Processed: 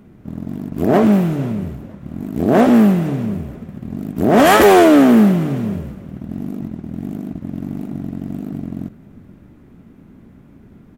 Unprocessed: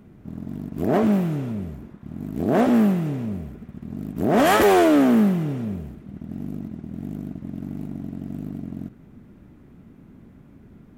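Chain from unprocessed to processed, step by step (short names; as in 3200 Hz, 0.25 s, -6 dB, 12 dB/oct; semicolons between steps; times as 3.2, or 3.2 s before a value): notches 50/100/150 Hz; in parallel at -7.5 dB: crossover distortion -40 dBFS; on the sum: frequency-shifting echo 0.476 s, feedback 31%, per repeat -40 Hz, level -21 dB; gain +4 dB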